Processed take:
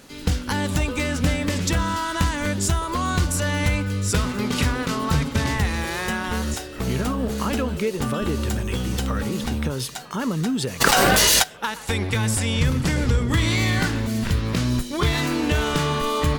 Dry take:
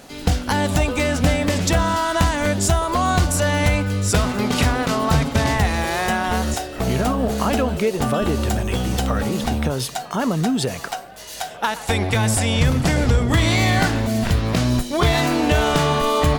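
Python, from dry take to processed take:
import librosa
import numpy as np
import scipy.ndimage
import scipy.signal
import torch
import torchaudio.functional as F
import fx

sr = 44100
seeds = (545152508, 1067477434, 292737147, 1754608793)

y = fx.peak_eq(x, sr, hz=700.0, db=-11.0, octaves=0.44)
y = fx.env_flatten(y, sr, amount_pct=100, at=(10.8, 11.42), fade=0.02)
y = y * librosa.db_to_amplitude(-3.0)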